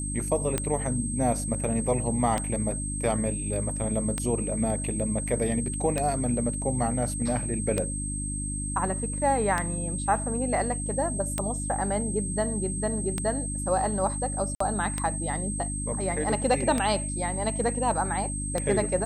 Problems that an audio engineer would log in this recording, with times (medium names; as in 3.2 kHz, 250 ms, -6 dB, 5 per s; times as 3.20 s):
hum 50 Hz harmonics 6 -33 dBFS
tick 33 1/3 rpm -12 dBFS
whine 8.3 kHz -33 dBFS
14.55–14.60 s: dropout 54 ms